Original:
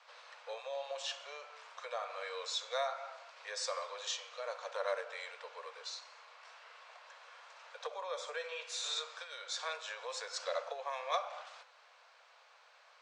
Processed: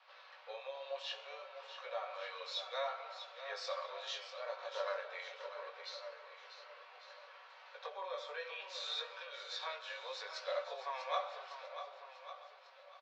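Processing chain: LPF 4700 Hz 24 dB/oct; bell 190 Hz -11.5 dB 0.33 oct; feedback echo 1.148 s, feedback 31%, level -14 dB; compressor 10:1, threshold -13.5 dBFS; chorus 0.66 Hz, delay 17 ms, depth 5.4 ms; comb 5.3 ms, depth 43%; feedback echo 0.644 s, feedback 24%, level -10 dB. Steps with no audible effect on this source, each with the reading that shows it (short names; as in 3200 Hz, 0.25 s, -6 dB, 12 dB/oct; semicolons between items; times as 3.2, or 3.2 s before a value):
bell 190 Hz: input band starts at 380 Hz; compressor, threshold -13.5 dBFS: input peak -22.0 dBFS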